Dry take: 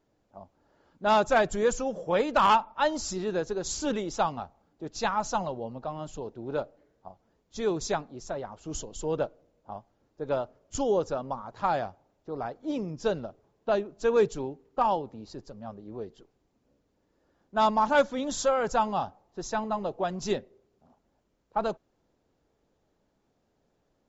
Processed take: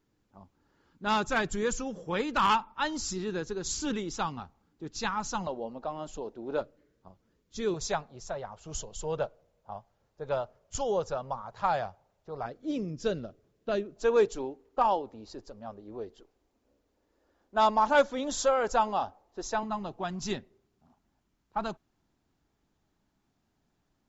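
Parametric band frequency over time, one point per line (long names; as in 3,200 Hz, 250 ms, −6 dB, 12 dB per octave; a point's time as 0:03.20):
parametric band −13 dB 0.76 octaves
630 Hz
from 0:05.47 120 Hz
from 0:06.61 750 Hz
from 0:07.74 290 Hz
from 0:12.46 870 Hz
from 0:13.96 150 Hz
from 0:19.63 510 Hz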